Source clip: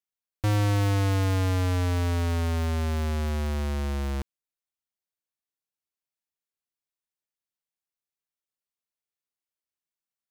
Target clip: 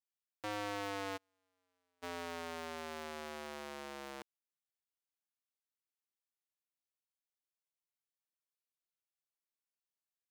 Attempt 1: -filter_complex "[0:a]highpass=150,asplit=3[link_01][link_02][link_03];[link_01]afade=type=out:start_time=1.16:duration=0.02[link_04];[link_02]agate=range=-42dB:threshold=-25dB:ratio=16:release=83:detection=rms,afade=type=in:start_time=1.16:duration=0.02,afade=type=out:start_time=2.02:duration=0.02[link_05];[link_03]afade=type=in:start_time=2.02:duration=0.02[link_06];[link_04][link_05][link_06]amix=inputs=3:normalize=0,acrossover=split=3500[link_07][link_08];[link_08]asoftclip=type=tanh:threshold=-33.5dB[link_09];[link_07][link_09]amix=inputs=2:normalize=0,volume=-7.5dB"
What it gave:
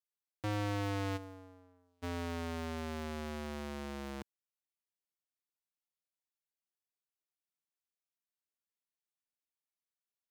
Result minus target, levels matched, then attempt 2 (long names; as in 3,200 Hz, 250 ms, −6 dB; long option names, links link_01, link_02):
125 Hz band +14.0 dB
-filter_complex "[0:a]highpass=440,asplit=3[link_01][link_02][link_03];[link_01]afade=type=out:start_time=1.16:duration=0.02[link_04];[link_02]agate=range=-42dB:threshold=-25dB:ratio=16:release=83:detection=rms,afade=type=in:start_time=1.16:duration=0.02,afade=type=out:start_time=2.02:duration=0.02[link_05];[link_03]afade=type=in:start_time=2.02:duration=0.02[link_06];[link_04][link_05][link_06]amix=inputs=3:normalize=0,acrossover=split=3500[link_07][link_08];[link_08]asoftclip=type=tanh:threshold=-33.5dB[link_09];[link_07][link_09]amix=inputs=2:normalize=0,volume=-7.5dB"